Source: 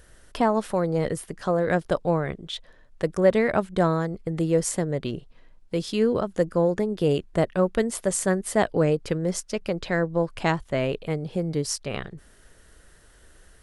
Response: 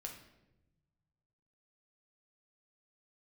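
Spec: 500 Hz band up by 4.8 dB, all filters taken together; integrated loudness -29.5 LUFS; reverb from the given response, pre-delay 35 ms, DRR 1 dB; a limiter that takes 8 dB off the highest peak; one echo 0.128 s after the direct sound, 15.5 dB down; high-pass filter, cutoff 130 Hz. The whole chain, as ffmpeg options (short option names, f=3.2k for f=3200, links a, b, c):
-filter_complex "[0:a]highpass=130,equalizer=f=500:t=o:g=5.5,alimiter=limit=-11dB:level=0:latency=1,aecho=1:1:128:0.168,asplit=2[a][b];[1:a]atrim=start_sample=2205,adelay=35[c];[b][c]afir=irnorm=-1:irlink=0,volume=2dB[d];[a][d]amix=inputs=2:normalize=0,volume=-8.5dB"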